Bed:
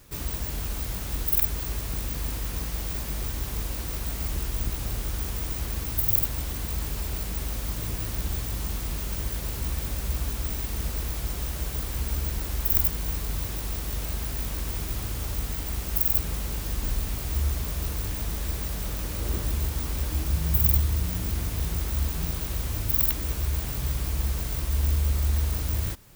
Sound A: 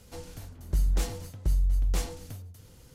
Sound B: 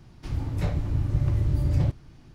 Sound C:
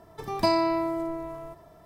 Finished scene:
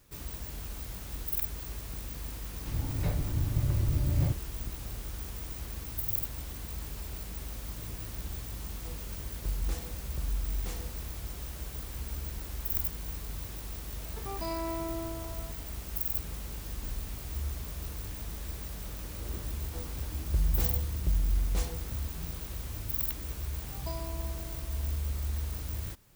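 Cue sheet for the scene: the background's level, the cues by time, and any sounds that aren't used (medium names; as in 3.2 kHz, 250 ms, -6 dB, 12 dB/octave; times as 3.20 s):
bed -9 dB
2.42 s: add B -4.5 dB
8.72 s: add A -8.5 dB
13.98 s: add C -7.5 dB + peak limiter -21.5 dBFS
19.61 s: add A -3.5 dB + tape noise reduction on one side only decoder only
23.43 s: add C -17.5 dB + static phaser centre 420 Hz, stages 6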